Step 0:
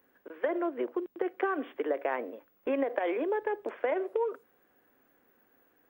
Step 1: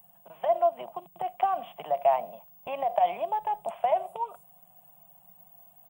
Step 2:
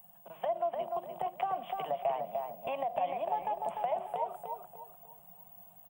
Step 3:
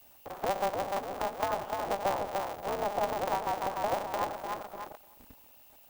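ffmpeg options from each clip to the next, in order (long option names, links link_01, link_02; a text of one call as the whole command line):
ffmpeg -i in.wav -af "firequalizer=gain_entry='entry(110,0);entry(170,13);entry(260,-27);entry(470,-23);entry(680,7);entry(1600,-21);entry(2900,-1);entry(5000,-12);entry(8200,13);entry(13000,8)':delay=0.05:min_phase=1,volume=7.5dB" out.wav
ffmpeg -i in.wav -filter_complex "[0:a]acrossover=split=250[link_01][link_02];[link_02]acompressor=threshold=-34dB:ratio=2.5[link_03];[link_01][link_03]amix=inputs=2:normalize=0,asplit=2[link_04][link_05];[link_05]adelay=298,lowpass=frequency=2300:poles=1,volume=-4dB,asplit=2[link_06][link_07];[link_07]adelay=298,lowpass=frequency=2300:poles=1,volume=0.36,asplit=2[link_08][link_09];[link_09]adelay=298,lowpass=frequency=2300:poles=1,volume=0.36,asplit=2[link_10][link_11];[link_11]adelay=298,lowpass=frequency=2300:poles=1,volume=0.36,asplit=2[link_12][link_13];[link_13]adelay=298,lowpass=frequency=2300:poles=1,volume=0.36[link_14];[link_04][link_06][link_08][link_10][link_12][link_14]amix=inputs=6:normalize=0" out.wav
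ffmpeg -i in.wav -af "aeval=exprs='val(0)+0.5*0.0158*sgn(val(0))':channel_layout=same,afwtdn=0.0158,aeval=exprs='val(0)*sgn(sin(2*PI*100*n/s))':channel_layout=same" out.wav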